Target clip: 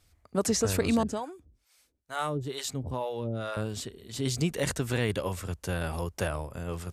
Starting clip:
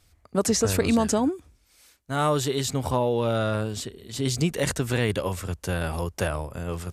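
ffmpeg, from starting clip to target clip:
ffmpeg -i in.wav -filter_complex "[0:a]asettb=1/sr,asplit=3[link_01][link_02][link_03];[link_01]atrim=end=1.034[link_04];[link_02]atrim=start=1.03:end=3.57,asetpts=PTS-STARTPTS,afade=type=in:duration=0.004:curve=qsin,afade=type=out:start_time=2.536:duration=0.004:curve=qsin,acrossover=split=490[link_05][link_06];[link_05]aeval=exprs='val(0)*(1-1/2+1/2*cos(2*PI*2.2*n/s))':channel_layout=same[link_07];[link_06]aeval=exprs='val(0)*(1-1/2-1/2*cos(2*PI*2.2*n/s))':channel_layout=same[link_08];[link_07][link_08]amix=inputs=2:normalize=0[link_09];[link_03]atrim=start=3.566[link_10];[link_04][link_09]acrossfade=duration=0.004:curve1=hsin:curve2=qsin[link_11];[link_11][link_10]acrossfade=duration=0.004:curve1=qsin:curve2=hsin,volume=-4dB" out.wav

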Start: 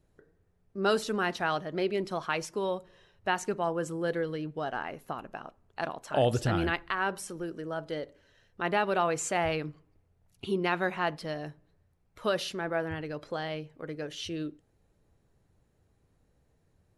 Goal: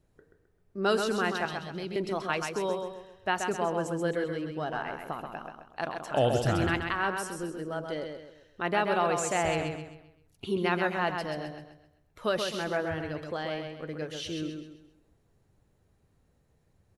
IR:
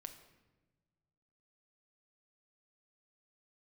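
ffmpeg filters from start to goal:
-filter_complex "[0:a]asettb=1/sr,asplit=3[link_01][link_02][link_03];[link_01]atrim=end=1.454[link_04];[link_02]atrim=start=1.45:end=1.96,asetpts=PTS-STARTPTS,afade=type=in:duration=0.004:curve=qsin,afade=type=out:start_time=0.506:duration=0.004:curve=qsin,acrossover=split=250|3000[link_05][link_06][link_07];[link_06]acompressor=threshold=-42dB:ratio=6[link_08];[link_05][link_08][link_07]amix=inputs=3:normalize=0[link_09];[link_03]atrim=start=1.956[link_10];[link_04][link_09]acrossfade=duration=0.004:curve1=hsin:curve2=qsin[link_11];[link_11][link_10]acrossfade=duration=0.004:curve1=qsin:curve2=hsin,asplit=2[link_12][link_13];[link_13]aecho=0:1:131|262|393|524|655:0.531|0.202|0.0767|0.0291|0.0111[link_14];[link_12][link_14]amix=inputs=2:normalize=0"

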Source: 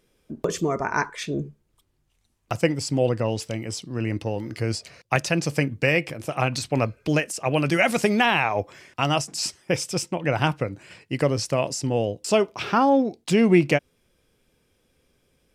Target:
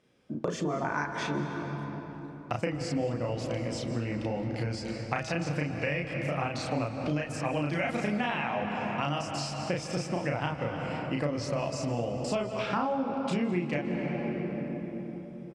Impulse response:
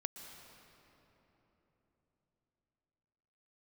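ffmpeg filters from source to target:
-filter_complex "[0:a]equalizer=frequency=410:width_type=o:width=0.26:gain=-8,bandreject=frequency=160.3:width_type=h:width=4,bandreject=frequency=320.6:width_type=h:width=4,bandreject=frequency=480.9:width_type=h:width=4,bandreject=frequency=641.2:width_type=h:width=4,bandreject=frequency=801.5:width_type=h:width=4,bandreject=frequency=961.8:width_type=h:width=4,bandreject=frequency=1122.1:width_type=h:width=4,bandreject=frequency=1282.4:width_type=h:width=4,bandreject=frequency=1442.7:width_type=h:width=4,bandreject=frequency=1603:width_type=h:width=4,bandreject=frequency=1763.3:width_type=h:width=4,bandreject=frequency=1923.6:width_type=h:width=4,bandreject=frequency=2083.9:width_type=h:width=4,bandreject=frequency=2244.2:width_type=h:width=4,bandreject=frequency=2404.5:width_type=h:width=4,bandreject=frequency=2564.8:width_type=h:width=4,bandreject=frequency=2725.1:width_type=h:width=4,bandreject=frequency=2885.4:width_type=h:width=4,bandreject=frequency=3045.7:width_type=h:width=4,bandreject=frequency=3206:width_type=h:width=4,bandreject=frequency=3366.3:width_type=h:width=4,bandreject=frequency=3526.6:width_type=h:width=4,bandreject=frequency=3686.9:width_type=h:width=4,bandreject=frequency=3847.2:width_type=h:width=4,bandreject=frequency=4007.5:width_type=h:width=4,bandreject=frequency=4167.8:width_type=h:width=4,bandreject=frequency=4328.1:width_type=h:width=4,asplit=2[link_01][link_02];[1:a]atrim=start_sample=2205,adelay=34[link_03];[link_02][link_03]afir=irnorm=-1:irlink=0,volume=2dB[link_04];[link_01][link_04]amix=inputs=2:normalize=0,acompressor=threshold=-27dB:ratio=6,highpass=110,lowpass=8000,highshelf=frequency=4000:gain=-9.5,asplit=4[link_05][link_06][link_07][link_08];[link_06]adelay=208,afreqshift=-50,volume=-19.5dB[link_09];[link_07]adelay=416,afreqshift=-100,volume=-28.1dB[link_10];[link_08]adelay=624,afreqshift=-150,volume=-36.8dB[link_11];[link_05][link_09][link_10][link_11]amix=inputs=4:normalize=0"

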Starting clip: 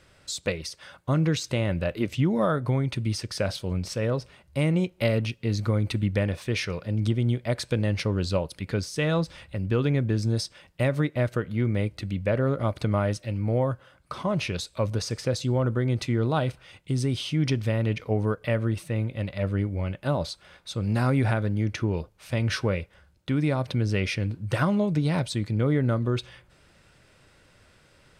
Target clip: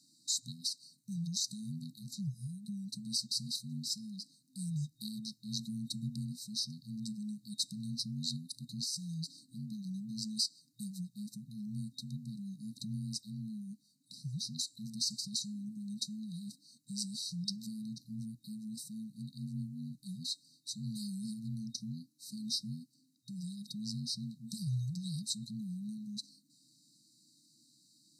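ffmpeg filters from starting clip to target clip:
ffmpeg -i in.wav -af "afftfilt=real='re*(1-between(b*sr/4096,210,4100))':imag='im*(1-between(b*sr/4096,210,4100))':win_size=4096:overlap=0.75,lowshelf=frequency=220:width_type=q:width=1.5:gain=-14,afreqshift=-330,volume=1dB" out.wav

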